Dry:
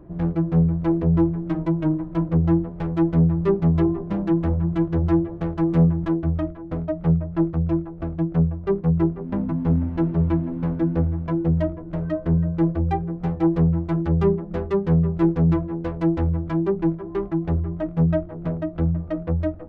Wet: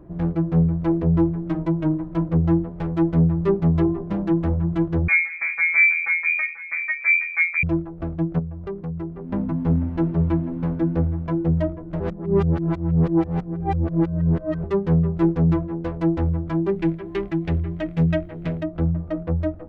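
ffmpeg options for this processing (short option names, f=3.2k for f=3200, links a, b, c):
-filter_complex "[0:a]asettb=1/sr,asplit=3[a][b][c];[a]atrim=end=5.084[d];[b]atrim=start=5.08:end=7.63,asetpts=PTS-STARTPTS,afade=t=in:d=0.004:c=qsin,afade=t=out:st=2.546:d=0.004:c=qsin,lowpass=f=2.1k:t=q:w=0.5098,lowpass=f=2.1k:t=q:w=0.6013,lowpass=f=2.1k:t=q:w=0.9,lowpass=f=2.1k:t=q:w=2.563,afreqshift=-2500[e];[c]atrim=start=7.626[f];[d][e]acrossfade=d=0.004:c1=hsin:c2=qsin[g];[g][f]acrossfade=d=0.004:c1=qsin:c2=hsin,asplit=3[h][i][j];[h]afade=t=out:st=8.38:d=0.02[k];[i]acompressor=threshold=-30dB:ratio=3:attack=3.2:release=140:knee=1:detection=peak,afade=t=in:st=8.38:d=0.02,afade=t=out:st=9.29:d=0.02[l];[j]afade=t=in:st=9.29:d=0.02[m];[k][l][m]amix=inputs=3:normalize=0,asplit=3[n][o][p];[n]afade=t=out:st=16.68:d=0.02[q];[o]highshelf=f=1.6k:t=q:w=1.5:g=10,afade=t=in:st=16.68:d=0.02,afade=t=out:st=18.62:d=0.02[r];[p]afade=t=in:st=18.62:d=0.02[s];[q][r][s]amix=inputs=3:normalize=0,asplit=3[t][u][v];[t]atrim=end=12.002[w];[u]atrim=start=11.998:end=14.642,asetpts=PTS-STARTPTS,areverse[x];[v]atrim=start=14.638[y];[w][x]acrossfade=d=0.004:c1=hsin:c2=hsin[z];[z][y]acrossfade=d=0.004:c1=hsin:c2=hsin"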